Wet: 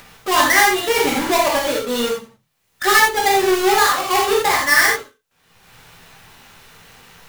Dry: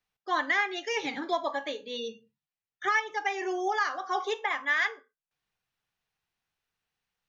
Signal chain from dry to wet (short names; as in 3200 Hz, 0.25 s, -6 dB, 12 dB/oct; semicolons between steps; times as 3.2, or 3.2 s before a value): half-waves squared off; non-linear reverb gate 0.11 s flat, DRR -3 dB; in parallel at +2.5 dB: upward compressor, threshold -21 dBFS; on the sum: gain -2 dB